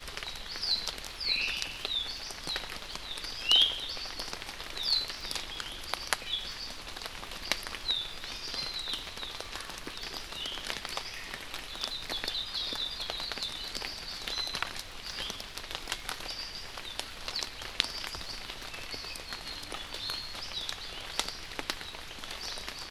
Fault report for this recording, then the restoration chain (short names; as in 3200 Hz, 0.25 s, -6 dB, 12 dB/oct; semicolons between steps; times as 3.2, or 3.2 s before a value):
crackle 25/s -41 dBFS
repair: de-click